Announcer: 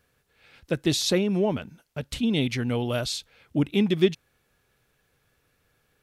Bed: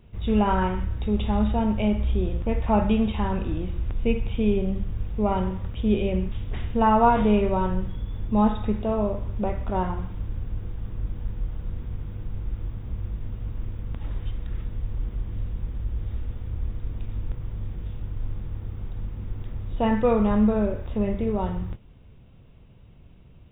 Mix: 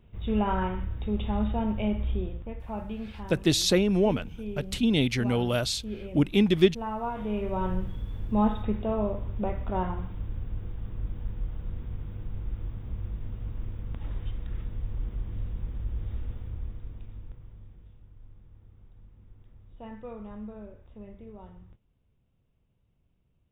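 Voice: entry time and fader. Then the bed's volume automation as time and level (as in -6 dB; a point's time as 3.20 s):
2.60 s, +0.5 dB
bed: 2.14 s -5 dB
2.56 s -14.5 dB
7.14 s -14.5 dB
7.69 s -3.5 dB
16.31 s -3.5 dB
18.04 s -20.5 dB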